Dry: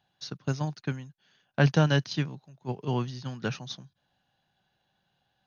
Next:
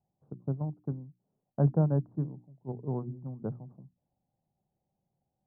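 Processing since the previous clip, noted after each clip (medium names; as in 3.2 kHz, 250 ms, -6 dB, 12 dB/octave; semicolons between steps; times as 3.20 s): local Wiener filter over 25 samples; Bessel low-pass 610 Hz, order 8; hum notches 60/120/180/240/300/360 Hz; trim -2 dB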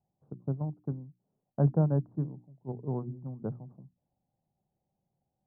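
no audible change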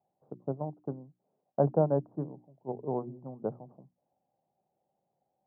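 band-pass filter 640 Hz, Q 1.3; trim +8.5 dB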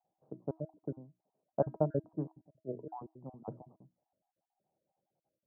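random holes in the spectrogram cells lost 39%; distance through air 410 m; feedback comb 320 Hz, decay 0.23 s, harmonics all, mix 60%; trim +5 dB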